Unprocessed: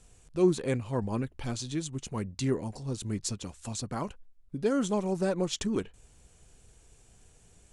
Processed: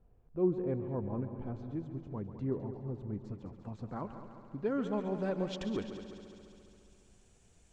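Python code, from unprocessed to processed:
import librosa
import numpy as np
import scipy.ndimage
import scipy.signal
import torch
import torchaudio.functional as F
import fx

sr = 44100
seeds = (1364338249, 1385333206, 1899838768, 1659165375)

y = fx.echo_heads(x, sr, ms=69, heads='second and third', feedback_pct=64, wet_db=-12.0)
y = fx.filter_sweep_lowpass(y, sr, from_hz=870.0, to_hz=7500.0, start_s=3.16, end_s=7.11, q=0.79)
y = F.gain(torch.from_numpy(y), -6.0).numpy()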